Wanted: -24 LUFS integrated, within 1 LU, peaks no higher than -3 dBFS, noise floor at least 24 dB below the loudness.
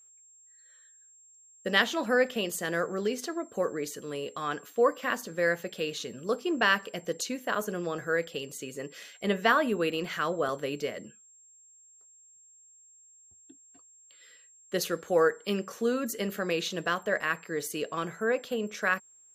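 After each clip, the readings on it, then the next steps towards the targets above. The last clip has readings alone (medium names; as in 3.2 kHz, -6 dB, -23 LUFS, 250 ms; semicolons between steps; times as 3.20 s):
steady tone 7.5 kHz; tone level -55 dBFS; loudness -30.0 LUFS; peak level -7.0 dBFS; loudness target -24.0 LUFS
-> band-stop 7.5 kHz, Q 30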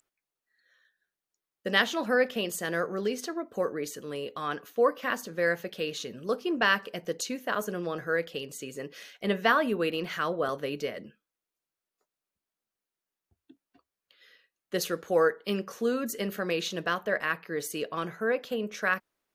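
steady tone not found; loudness -30.0 LUFS; peak level -7.0 dBFS; loudness target -24.0 LUFS
-> trim +6 dB; peak limiter -3 dBFS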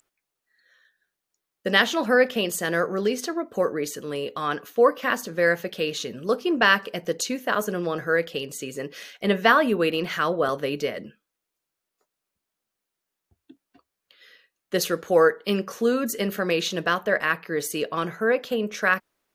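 loudness -24.0 LUFS; peak level -3.0 dBFS; noise floor -84 dBFS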